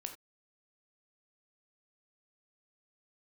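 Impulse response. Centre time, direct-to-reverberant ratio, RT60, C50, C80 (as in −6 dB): 13 ms, 5.0 dB, non-exponential decay, 9.5 dB, 14.5 dB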